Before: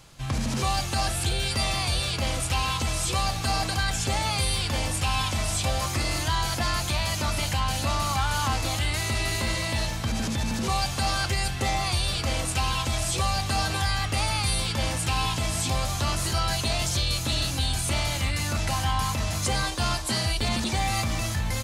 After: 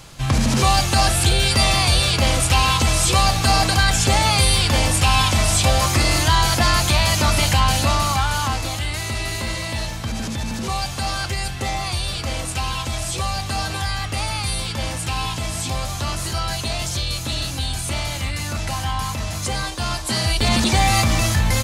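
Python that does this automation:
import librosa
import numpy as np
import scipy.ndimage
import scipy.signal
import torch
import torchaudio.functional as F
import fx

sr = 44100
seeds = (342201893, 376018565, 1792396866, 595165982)

y = fx.gain(x, sr, db=fx.line((7.67, 9.5), (8.77, 1.5), (19.86, 1.5), (20.6, 9.5)))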